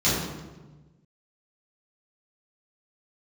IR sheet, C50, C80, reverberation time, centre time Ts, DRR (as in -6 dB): -0.5 dB, 2.5 dB, 1.2 s, 78 ms, -11.5 dB